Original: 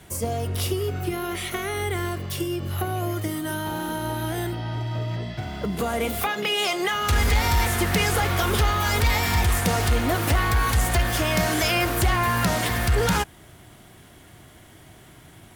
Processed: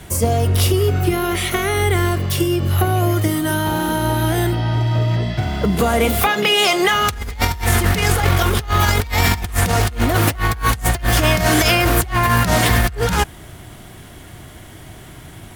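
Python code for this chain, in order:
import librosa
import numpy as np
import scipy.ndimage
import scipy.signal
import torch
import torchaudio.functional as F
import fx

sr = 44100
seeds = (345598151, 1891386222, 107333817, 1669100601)

y = fx.low_shelf(x, sr, hz=75.0, db=7.5)
y = fx.over_compress(y, sr, threshold_db=-22.0, ratio=-0.5)
y = F.gain(torch.from_numpy(y), 6.5).numpy()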